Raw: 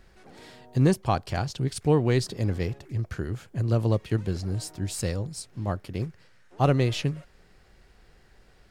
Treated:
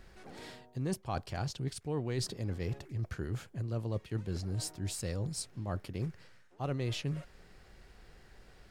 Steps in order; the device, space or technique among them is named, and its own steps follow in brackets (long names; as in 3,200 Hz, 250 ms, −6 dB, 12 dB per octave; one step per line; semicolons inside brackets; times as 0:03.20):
compression on the reversed sound (reversed playback; downward compressor 6 to 1, threshold −33 dBFS, peak gain reduction 16 dB; reversed playback)